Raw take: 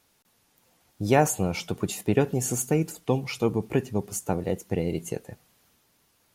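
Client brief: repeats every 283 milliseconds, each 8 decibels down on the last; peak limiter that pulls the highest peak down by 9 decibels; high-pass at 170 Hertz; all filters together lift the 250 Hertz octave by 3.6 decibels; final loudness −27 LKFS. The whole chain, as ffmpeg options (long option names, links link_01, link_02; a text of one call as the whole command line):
ffmpeg -i in.wav -af "highpass=170,equalizer=frequency=250:width_type=o:gain=6,alimiter=limit=-15dB:level=0:latency=1,aecho=1:1:283|566|849|1132|1415:0.398|0.159|0.0637|0.0255|0.0102,volume=0.5dB" out.wav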